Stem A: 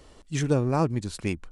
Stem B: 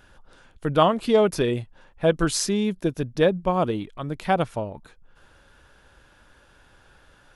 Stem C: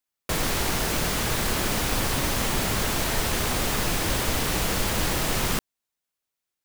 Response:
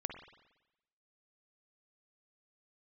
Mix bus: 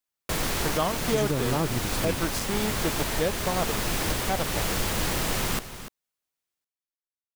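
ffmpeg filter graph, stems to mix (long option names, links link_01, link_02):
-filter_complex "[0:a]adelay=800,volume=1.5dB[link_01];[1:a]aeval=exprs='val(0)*gte(abs(val(0)),0.075)':channel_layout=same,volume=-3dB[link_02];[2:a]volume=-2dB,asplit=2[link_03][link_04];[link_04]volume=-13dB,aecho=0:1:293:1[link_05];[link_01][link_02][link_03][link_05]amix=inputs=4:normalize=0,alimiter=limit=-14.5dB:level=0:latency=1:release=373"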